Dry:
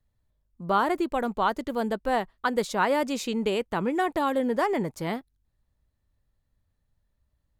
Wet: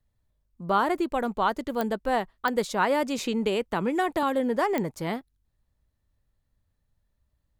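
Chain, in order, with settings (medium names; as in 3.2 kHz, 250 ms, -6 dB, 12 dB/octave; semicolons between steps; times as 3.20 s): clicks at 1.81/2.48/4.78 s, -14 dBFS; 3.18–4.23 s: three bands compressed up and down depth 40%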